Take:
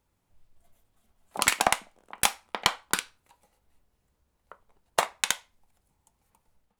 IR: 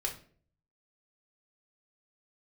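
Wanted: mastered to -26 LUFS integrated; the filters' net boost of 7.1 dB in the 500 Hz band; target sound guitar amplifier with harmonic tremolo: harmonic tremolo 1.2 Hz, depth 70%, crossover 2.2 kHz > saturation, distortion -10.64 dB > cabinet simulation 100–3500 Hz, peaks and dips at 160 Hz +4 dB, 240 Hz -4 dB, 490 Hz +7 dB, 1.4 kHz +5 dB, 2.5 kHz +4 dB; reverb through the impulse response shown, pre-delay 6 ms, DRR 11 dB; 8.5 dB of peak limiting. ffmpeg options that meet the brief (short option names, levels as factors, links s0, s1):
-filter_complex "[0:a]equalizer=f=500:t=o:g=5.5,alimiter=limit=0.299:level=0:latency=1,asplit=2[s0][s1];[1:a]atrim=start_sample=2205,adelay=6[s2];[s1][s2]afir=irnorm=-1:irlink=0,volume=0.211[s3];[s0][s3]amix=inputs=2:normalize=0,acrossover=split=2200[s4][s5];[s4]aeval=exprs='val(0)*(1-0.7/2+0.7/2*cos(2*PI*1.2*n/s))':c=same[s6];[s5]aeval=exprs='val(0)*(1-0.7/2-0.7/2*cos(2*PI*1.2*n/s))':c=same[s7];[s6][s7]amix=inputs=2:normalize=0,asoftclip=threshold=0.0944,highpass=100,equalizer=f=160:t=q:w=4:g=4,equalizer=f=240:t=q:w=4:g=-4,equalizer=f=490:t=q:w=4:g=7,equalizer=f=1400:t=q:w=4:g=5,equalizer=f=2500:t=q:w=4:g=4,lowpass=f=3500:w=0.5412,lowpass=f=3500:w=1.3066,volume=3.16"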